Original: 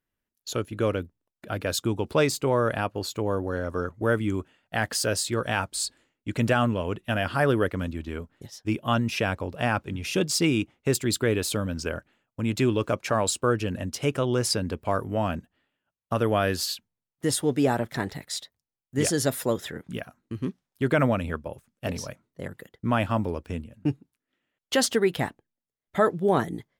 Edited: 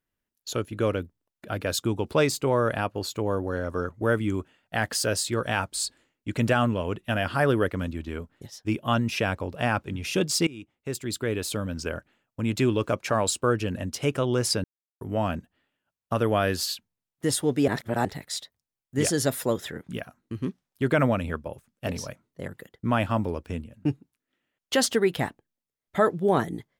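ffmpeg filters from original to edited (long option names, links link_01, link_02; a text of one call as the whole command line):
ffmpeg -i in.wav -filter_complex "[0:a]asplit=6[link_01][link_02][link_03][link_04][link_05][link_06];[link_01]atrim=end=10.47,asetpts=PTS-STARTPTS,afade=type=out:start_time=10.466:duration=0.004:curve=hsin:silence=0.0841395[link_07];[link_02]atrim=start=10.47:end=14.64,asetpts=PTS-STARTPTS,afade=type=in:duration=2.02:curve=qsin:silence=0.0841395,afade=type=out:start_time=4.166:duration=0.004:curve=hsin[link_08];[link_03]atrim=start=14.64:end=15.01,asetpts=PTS-STARTPTS,volume=0[link_09];[link_04]atrim=start=15.01:end=17.682,asetpts=PTS-STARTPTS,afade=type=in:duration=0.004:curve=hsin[link_10];[link_05]atrim=start=17.678:end=18.052,asetpts=PTS-STARTPTS,areverse[link_11];[link_06]atrim=start=18.048[link_12];[link_07][link_08][link_09][link_10]concat=n=4:v=0:a=1[link_13];[link_13][link_11]acrossfade=duration=0.004:curve1=hsin:curve2=hsin[link_14];[link_14][link_12]acrossfade=duration=0.004:curve1=hsin:curve2=hsin" out.wav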